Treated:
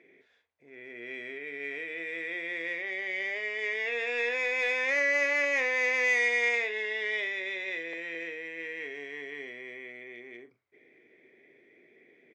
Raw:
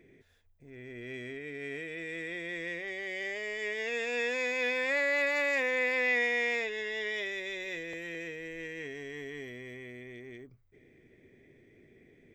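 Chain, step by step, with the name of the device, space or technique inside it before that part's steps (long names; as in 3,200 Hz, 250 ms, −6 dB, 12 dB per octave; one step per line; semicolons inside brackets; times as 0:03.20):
intercom (band-pass filter 390–4,100 Hz; parametric band 2,200 Hz +6 dB 0.24 octaves; soft clipping −21 dBFS, distortion −19 dB; double-tracking delay 42 ms −11 dB)
level +2 dB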